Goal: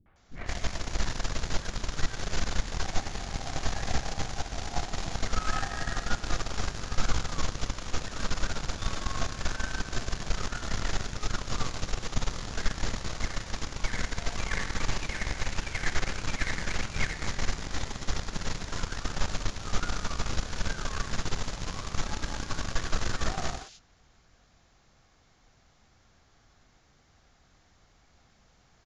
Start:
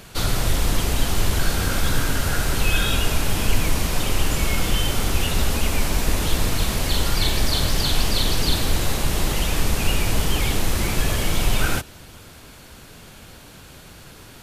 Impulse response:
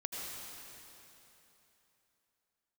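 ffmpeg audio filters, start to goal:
-filter_complex "[0:a]acrossover=split=670|5000[link_01][link_02][link_03];[link_02]adelay=30[link_04];[link_03]adelay=80[link_05];[link_01][link_04][link_05]amix=inputs=3:normalize=0,aeval=exprs='0.562*(cos(1*acos(clip(val(0)/0.562,-1,1)))-cos(1*PI/2))+0.0708*(cos(3*acos(clip(val(0)/0.562,-1,1)))-cos(3*PI/2))+0.01*(cos(6*acos(clip(val(0)/0.562,-1,1)))-cos(6*PI/2))+0.0316*(cos(7*acos(clip(val(0)/0.562,-1,1)))-cos(7*PI/2))':channel_layout=same,asetrate=22050,aresample=44100,volume=-5.5dB"

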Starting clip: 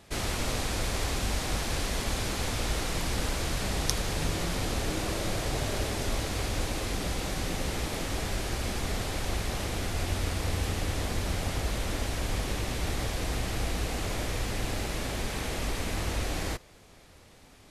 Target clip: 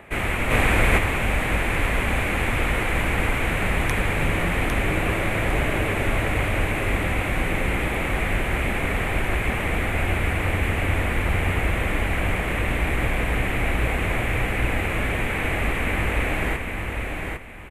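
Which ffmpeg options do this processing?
ffmpeg -i in.wav -filter_complex "[0:a]aecho=1:1:804|1608|2412:0.596|0.149|0.0372,acrossover=split=270|1500|1700[link_01][link_02][link_03][link_04];[link_02]acompressor=mode=upward:threshold=-51dB:ratio=2.5[link_05];[link_01][link_05][link_03][link_04]amix=inputs=4:normalize=0,highshelf=frequency=3400:width_type=q:width=3:gain=-14,aexciter=amount=1.2:drive=9.8:freq=7500,asplit=3[link_06][link_07][link_08];[link_06]afade=type=out:start_time=0.5:duration=0.02[link_09];[link_07]acontrast=39,afade=type=in:start_time=0.5:duration=0.02,afade=type=out:start_time=0.97:duration=0.02[link_10];[link_08]afade=type=in:start_time=0.97:duration=0.02[link_11];[link_09][link_10][link_11]amix=inputs=3:normalize=0,volume=6dB" out.wav

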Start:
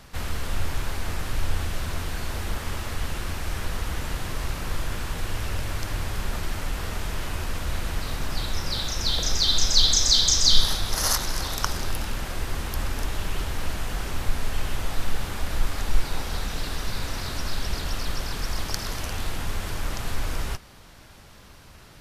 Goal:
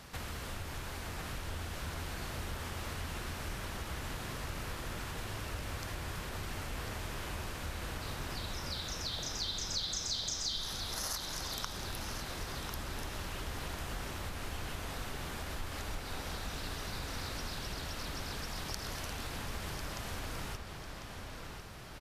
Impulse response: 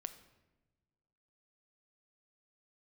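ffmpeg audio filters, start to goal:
-filter_complex "[0:a]highpass=frequency=72:poles=1,acompressor=threshold=-38dB:ratio=3,asplit=2[link_01][link_02];[link_02]adelay=1048,lowpass=frequency=4600:poles=1,volume=-5.5dB,asplit=2[link_03][link_04];[link_04]adelay=1048,lowpass=frequency=4600:poles=1,volume=0.53,asplit=2[link_05][link_06];[link_06]adelay=1048,lowpass=frequency=4600:poles=1,volume=0.53,asplit=2[link_07][link_08];[link_08]adelay=1048,lowpass=frequency=4600:poles=1,volume=0.53,asplit=2[link_09][link_10];[link_10]adelay=1048,lowpass=frequency=4600:poles=1,volume=0.53,asplit=2[link_11][link_12];[link_12]adelay=1048,lowpass=frequency=4600:poles=1,volume=0.53,asplit=2[link_13][link_14];[link_14]adelay=1048,lowpass=frequency=4600:poles=1,volume=0.53[link_15];[link_01][link_03][link_05][link_07][link_09][link_11][link_13][link_15]amix=inputs=8:normalize=0,volume=-2dB"

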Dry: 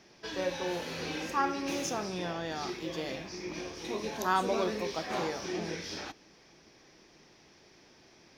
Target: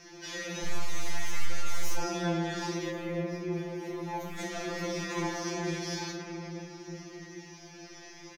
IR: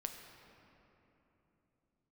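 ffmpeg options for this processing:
-filter_complex "[1:a]atrim=start_sample=2205[link_01];[0:a][link_01]afir=irnorm=-1:irlink=0,asettb=1/sr,asplit=3[link_02][link_03][link_04];[link_02]atrim=end=0.644[link_05];[link_03]atrim=start=0.64:end=1.98,asetpts=PTS-STARTPTS,afade=type=in:duration=0.004:curve=qsin,afade=type=out:start_time=1.336:duration=0.004:curve=qsin,aeval=exprs='abs(val(0))':channel_layout=same[link_06];[link_04]atrim=start=1.976[link_07];[link_05][link_06]acrossfade=duration=0.004:curve1=hsin:curve2=qsin[link_08];[link_08][link_07]acrossfade=duration=0.004:curve1=qsin:curve2=hsin,asplit=2[link_09][link_10];[link_10]acompressor=threshold=-49dB:ratio=6,volume=0.5dB[link_11];[link_09][link_11]amix=inputs=2:normalize=0,asoftclip=type=tanh:threshold=-32dB,equalizer=frequency=315:width_type=o:width=0.33:gain=7,equalizer=frequency=2000:width_type=o:width=0.33:gain=7,equalizer=frequency=6300:width_type=o:width=0.33:gain=9,equalizer=frequency=12500:width_type=o:width=0.33:gain=4,aecho=1:1:36|55:0.422|0.355,flanger=delay=5:depth=8:regen=66:speed=0.59:shape=sinusoidal,asettb=1/sr,asplit=3[link_12][link_13][link_14];[link_12]atrim=end=2.914[link_15];[link_13]atrim=start=2.91:end=4.39,asetpts=PTS-STARTPTS,afade=type=in:duration=0.004:curve=qsin,afade=type=out:start_time=1.476:duration=0.004:curve=qsin,equalizer=frequency=5800:width_type=o:width=2:gain=-14.5[link_16];[link_14]atrim=start=4.386[link_17];[link_15][link_16]acrossfade=duration=0.004:curve1=hsin:curve2=qsin[link_18];[link_18][link_17]acrossfade=duration=0.004:curve1=qsin:curve2=hsin,afftfilt=real='re*2.83*eq(mod(b,8),0)':imag='im*2.83*eq(mod(b,8),0)':win_size=2048:overlap=0.75,volume=7.5dB"

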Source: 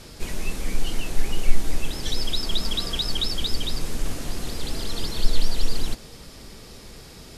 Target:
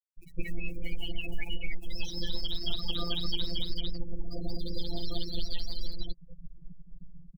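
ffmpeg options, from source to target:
ffmpeg -i in.wav -filter_complex "[0:a]aeval=exprs='if(lt(val(0),0),0.708*val(0),val(0))':channel_layout=same,bandreject=frequency=45.07:width_type=h:width=4,bandreject=frequency=90.14:width_type=h:width=4,afftfilt=real='re*gte(hypot(re,im),0.0355)':imag='im*gte(hypot(re,im),0.0355)':win_size=1024:overlap=0.75,acrossover=split=1000[link_01][link_02];[link_01]acompressor=threshold=-30dB:ratio=10[link_03];[link_02]acrusher=bits=5:mode=log:mix=0:aa=0.000001[link_04];[link_03][link_04]amix=inputs=2:normalize=0,afftfilt=real='hypot(re,im)*cos(PI*b)':imag='0':win_size=1024:overlap=0.75,asplit=2[link_05][link_06];[link_06]asoftclip=type=tanh:threshold=-21.5dB,volume=-11dB[link_07];[link_05][link_07]amix=inputs=2:normalize=0,acrossover=split=2600[link_08][link_09];[link_09]acompressor=threshold=-44dB:ratio=4:attack=1:release=60[link_10];[link_08][link_10]amix=inputs=2:normalize=0,acrossover=split=4400[link_11][link_12];[link_11]adelay=180[link_13];[link_13][link_12]amix=inputs=2:normalize=0,volume=6dB" out.wav

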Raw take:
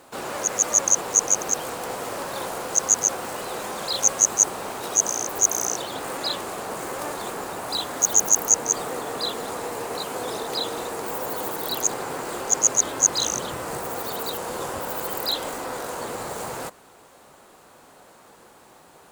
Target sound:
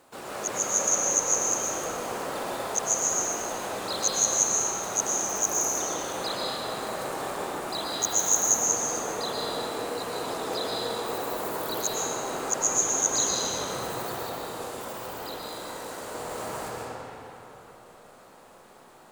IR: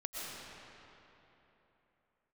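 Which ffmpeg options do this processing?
-filter_complex "[0:a]asettb=1/sr,asplit=3[link_01][link_02][link_03];[link_01]atrim=end=14.114[link_04];[link_02]atrim=start=14.11:end=16.15,asetpts=PTS-STARTPTS,afade=type=in:duration=0.004:curve=qsin,afade=type=out:start_time=2.036:duration=0.004:curve=qsin,acrossover=split=2600|5400[link_05][link_06][link_07];[link_05]acompressor=threshold=-34dB:ratio=4[link_08];[link_06]acompressor=threshold=-45dB:ratio=4[link_09];[link_07]acompressor=threshold=-37dB:ratio=4[link_10];[link_08][link_09][link_10]amix=inputs=3:normalize=0[link_11];[link_03]atrim=start=16.146[link_12];[link_04][link_11]acrossfade=duration=0.004:curve1=hsin:curve2=qsin[link_13];[link_13][link_12]acrossfade=duration=0.004:curve1=qsin:curve2=hsin[link_14];[1:a]atrim=start_sample=2205[link_15];[link_14][link_15]afir=irnorm=-1:irlink=0,volume=-3.5dB"

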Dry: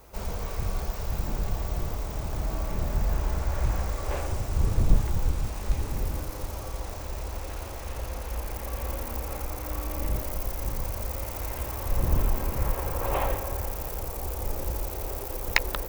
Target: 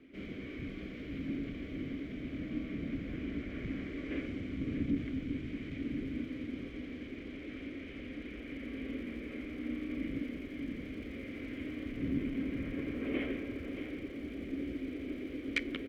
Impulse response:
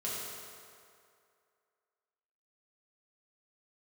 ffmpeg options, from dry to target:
-filter_complex "[0:a]acrossover=split=3000[link_01][link_02];[link_01]aeval=exprs='0.75*sin(PI/2*3.98*val(0)/0.75)':channel_layout=same[link_03];[link_03][link_02]amix=inputs=2:normalize=0,flanger=delay=4.8:depth=2.9:regen=89:speed=0.28:shape=triangular,asplit=2[link_04][link_05];[link_05]asetrate=35002,aresample=44100,atempo=1.25992,volume=-3dB[link_06];[link_04][link_06]amix=inputs=2:normalize=0,asplit=3[link_07][link_08][link_09];[link_07]bandpass=frequency=270:width_type=q:width=8,volume=0dB[link_10];[link_08]bandpass=frequency=2290:width_type=q:width=8,volume=-6dB[link_11];[link_09]bandpass=frequency=3010:width_type=q:width=8,volume=-9dB[link_12];[link_10][link_11][link_12]amix=inputs=3:normalize=0,aecho=1:1:630:0.335,volume=-1dB"

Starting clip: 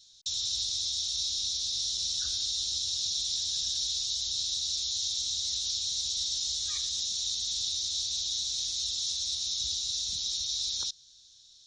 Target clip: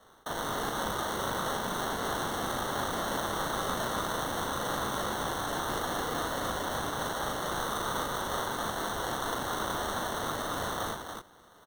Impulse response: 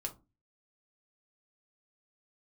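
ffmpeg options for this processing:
-af "flanger=delay=17:depth=7.8:speed=2.5,acrusher=samples=18:mix=1:aa=0.000001,aecho=1:1:37.9|285.7:0.631|0.562"

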